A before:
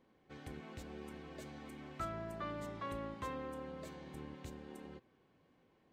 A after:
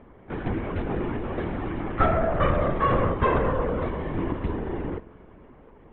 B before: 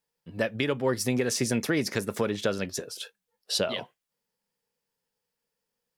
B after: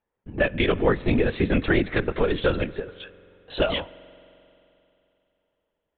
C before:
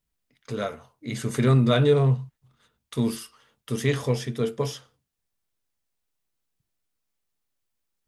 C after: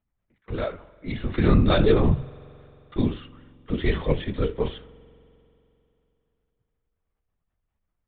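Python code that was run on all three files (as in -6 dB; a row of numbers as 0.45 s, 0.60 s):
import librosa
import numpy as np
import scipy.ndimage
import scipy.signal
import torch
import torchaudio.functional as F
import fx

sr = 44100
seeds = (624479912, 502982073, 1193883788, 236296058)

y = fx.lpc_vocoder(x, sr, seeds[0], excitation='whisper', order=16)
y = fx.env_lowpass(y, sr, base_hz=1600.0, full_db=-21.0)
y = fx.rev_spring(y, sr, rt60_s=3.0, pass_ms=(44,), chirp_ms=55, drr_db=19.5)
y = y * 10.0 ** (-26 / 20.0) / np.sqrt(np.mean(np.square(y)))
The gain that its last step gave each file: +21.0 dB, +6.0 dB, +1.5 dB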